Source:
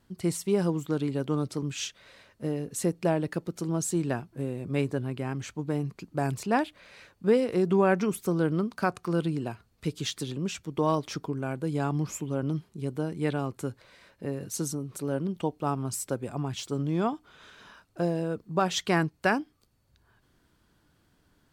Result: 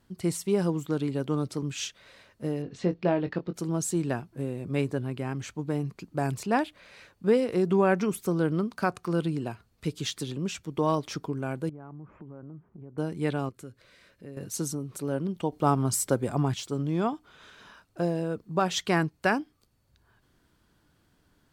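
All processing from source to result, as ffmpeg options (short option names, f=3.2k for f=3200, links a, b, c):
-filter_complex "[0:a]asettb=1/sr,asplit=3[a][b][c];[a]atrim=end=2.624[d];[b]atrim=start=2.62:end=3.54,asetpts=PTS-STARTPTS,afade=t=in:d=0.004:c=qsin,afade=t=out:st=0.916:d=0.004:c=qsin,lowpass=f=4.4k:w=0.5412,lowpass=f=4.4k:w=1.3066,asplit=2[e][f];[f]adelay=22,volume=-8.5dB[g];[e][g]amix=inputs=2:normalize=0,atrim=end_sample=40572[h];[c]atrim=start=3.536[i];[d][h]acrossfade=d=0.004:c1=hsin:c2=qsin[j];[j][i]acrossfade=d=0.004:c1=qsin:c2=hsin,asettb=1/sr,asplit=3[k][l][m];[k]atrim=end=11.694[n];[l]atrim=start=11.69:end=12.98,asetpts=PTS-STARTPTS,afade=t=in:d=0.004:c=qsin,afade=t=out:st=1.286:d=0.004:c=qsin,lowpass=f=1.6k:w=0.5412,lowpass=f=1.6k:w=1.3066,acompressor=threshold=-43dB:ratio=4:attack=3.2:release=140:knee=1:detection=peak[o];[m]atrim=start=12.976[p];[n][o]acrossfade=d=0.004:c1=hsin:c2=qsin[q];[q][p]acrossfade=d=0.004:c1=qsin:c2=hsin,asettb=1/sr,asplit=3[r][s][t];[r]atrim=end=13.494[u];[s]atrim=start=13.49:end=14.37,asetpts=PTS-STARTPTS,afade=t=in:d=0.004:c=qsin,afade=t=out:st=0.876:d=0.004:c=qsin,equalizer=f=850:w=3.4:g=-12,acompressor=threshold=-56dB:ratio=1.5:attack=3.2:release=140:knee=1:detection=peak[v];[t]atrim=start=14.366[w];[u][v]acrossfade=d=0.004:c1=hsin:c2=qsin[x];[x][w]acrossfade=d=0.004:c1=qsin:c2=hsin,asettb=1/sr,asplit=3[y][z][aa];[y]atrim=end=15.524[ab];[z]atrim=start=15.52:end=16.54,asetpts=PTS-STARTPTS,afade=t=in:d=0.004:c=qsin,afade=t=out:st=1.016:d=0.004:c=qsin,bandreject=f=2.6k:w=10,acontrast=47[ac];[aa]atrim=start=16.536[ad];[ab][ac]acrossfade=d=0.004:c1=hsin:c2=qsin[ae];[ae][ad]acrossfade=d=0.004:c1=qsin:c2=hsin"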